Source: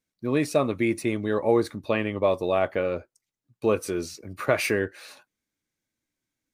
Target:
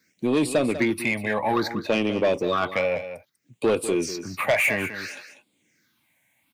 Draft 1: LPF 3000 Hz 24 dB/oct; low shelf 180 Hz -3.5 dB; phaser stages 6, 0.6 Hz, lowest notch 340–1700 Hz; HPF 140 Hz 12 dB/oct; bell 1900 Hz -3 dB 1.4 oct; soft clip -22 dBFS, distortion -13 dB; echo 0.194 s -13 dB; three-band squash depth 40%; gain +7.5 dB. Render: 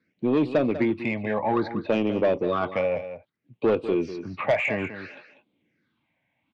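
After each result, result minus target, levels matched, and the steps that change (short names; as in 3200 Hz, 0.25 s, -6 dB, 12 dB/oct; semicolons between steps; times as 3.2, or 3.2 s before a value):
4000 Hz band -7.5 dB; 2000 Hz band -4.5 dB
remove: LPF 3000 Hz 24 dB/oct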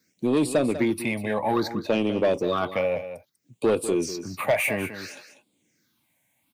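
2000 Hz band -4.0 dB
change: bell 1900 Hz +4.5 dB 1.4 oct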